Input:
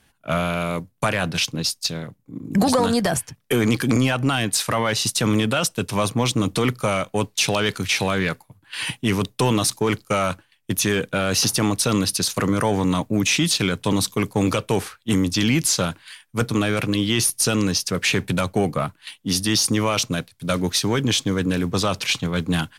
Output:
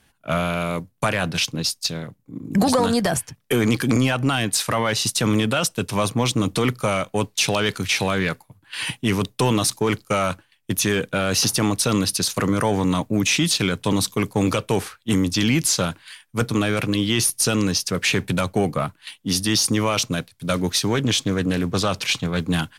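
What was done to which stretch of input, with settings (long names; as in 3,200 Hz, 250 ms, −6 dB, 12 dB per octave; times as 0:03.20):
0:20.94–0:22.40: highs frequency-modulated by the lows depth 0.14 ms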